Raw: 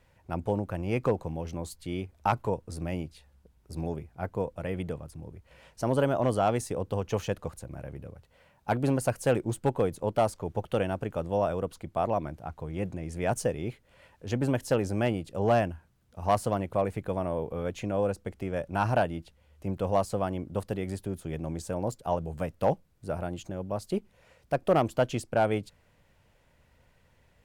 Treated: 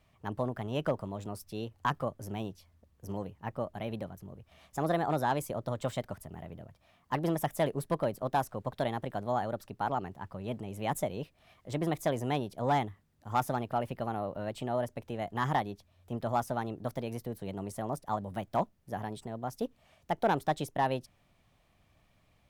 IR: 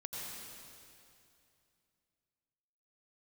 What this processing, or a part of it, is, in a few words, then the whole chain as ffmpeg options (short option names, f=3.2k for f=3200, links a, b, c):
nightcore: -af "asetrate=53802,aresample=44100,volume=-4dB"